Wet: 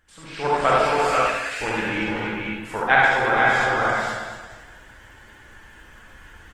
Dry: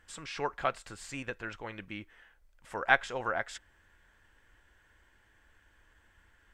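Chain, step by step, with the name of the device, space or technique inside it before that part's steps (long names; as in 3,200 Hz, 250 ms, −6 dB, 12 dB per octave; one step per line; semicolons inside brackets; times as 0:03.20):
feedback delay that plays each chunk backwards 115 ms, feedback 55%, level −7 dB
0:00.85–0:01.61: elliptic high-pass filter 1,700 Hz, stop band 40 dB
dynamic equaliser 7,500 Hz, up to −6 dB, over −58 dBFS, Q 1
multi-tap delay 70/345/452/481/499/598 ms −10.5/−10.5/−11/−10/−6.5/−17.5 dB
speakerphone in a meeting room (convolution reverb RT60 0.80 s, pre-delay 42 ms, DRR −3 dB; automatic gain control gain up to 11.5 dB; Opus 20 kbit/s 48,000 Hz)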